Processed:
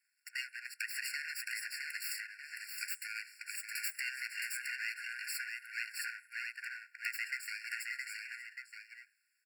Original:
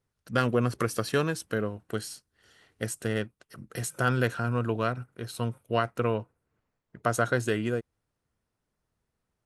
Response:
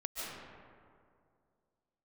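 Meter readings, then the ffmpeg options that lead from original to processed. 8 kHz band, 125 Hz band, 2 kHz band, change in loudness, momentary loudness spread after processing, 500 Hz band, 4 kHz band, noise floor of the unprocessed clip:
-3.5 dB, under -40 dB, -2.5 dB, -10.0 dB, 7 LU, under -40 dB, -3.0 dB, -83 dBFS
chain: -filter_complex "[0:a]bandreject=f=50:t=h:w=6,bandreject=f=100:t=h:w=6,bandreject=f=150:t=h:w=6,bandreject=f=200:t=h:w=6,bandreject=f=250:t=h:w=6,bandreject=f=300:t=h:w=6,bandreject=f=350:t=h:w=6,bandreject=f=400:t=h:w=6,bandreject=f=450:t=h:w=6,bandreject=f=500:t=h:w=6,asplit=2[s0][s1];[s1]adelay=583.1,volume=0.224,highshelf=f=4000:g=-13.1[s2];[s0][s2]amix=inputs=2:normalize=0,acompressor=threshold=0.0178:ratio=5,asoftclip=type=tanh:threshold=0.0447,acrossover=split=450[s3][s4];[s3]acompressor=threshold=0.00316:ratio=6[s5];[s5][s4]amix=inputs=2:normalize=0,asplit=2[s6][s7];[s7]aecho=0:1:667:0.631[s8];[s6][s8]amix=inputs=2:normalize=0,aeval=exprs='abs(val(0))':c=same,afftfilt=real='re*eq(mod(floor(b*sr/1024/1400),2),1)':imag='im*eq(mod(floor(b*sr/1024/1400),2),1)':win_size=1024:overlap=0.75,volume=3.55"

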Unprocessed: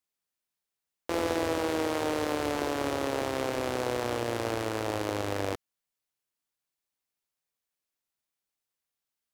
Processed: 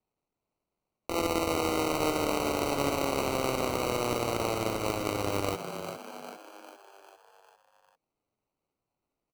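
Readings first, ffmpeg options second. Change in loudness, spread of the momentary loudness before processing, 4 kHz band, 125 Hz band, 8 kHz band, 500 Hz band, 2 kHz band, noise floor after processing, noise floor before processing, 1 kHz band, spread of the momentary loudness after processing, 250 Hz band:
+1.0 dB, 3 LU, +2.5 dB, +1.5 dB, +4.0 dB, +0.5 dB, -0.5 dB, under -85 dBFS, under -85 dBFS, +2.0 dB, 14 LU, +0.5 dB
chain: -filter_complex "[0:a]acrusher=samples=26:mix=1:aa=0.000001,asplit=7[s0][s1][s2][s3][s4][s5][s6];[s1]adelay=400,afreqshift=73,volume=0.398[s7];[s2]adelay=800,afreqshift=146,volume=0.214[s8];[s3]adelay=1200,afreqshift=219,volume=0.116[s9];[s4]adelay=1600,afreqshift=292,volume=0.0624[s10];[s5]adelay=2000,afreqshift=365,volume=0.0339[s11];[s6]adelay=2400,afreqshift=438,volume=0.0182[s12];[s0][s7][s8][s9][s10][s11][s12]amix=inputs=7:normalize=0"

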